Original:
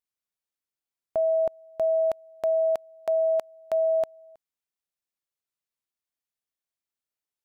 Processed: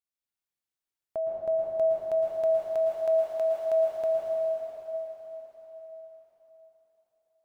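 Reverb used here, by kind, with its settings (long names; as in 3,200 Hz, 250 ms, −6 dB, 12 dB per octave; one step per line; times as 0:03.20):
dense smooth reverb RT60 4.6 s, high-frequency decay 0.95×, pre-delay 100 ms, DRR −5 dB
level −6.5 dB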